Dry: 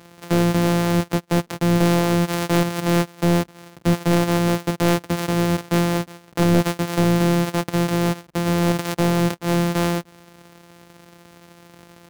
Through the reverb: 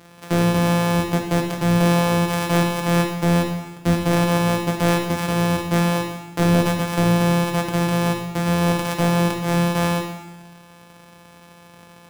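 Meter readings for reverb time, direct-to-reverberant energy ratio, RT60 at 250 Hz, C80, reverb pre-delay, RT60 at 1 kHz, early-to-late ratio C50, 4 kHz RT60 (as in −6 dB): 1.1 s, 2.0 dB, 1.1 s, 7.5 dB, 7 ms, 1.1 s, 5.0 dB, 1.0 s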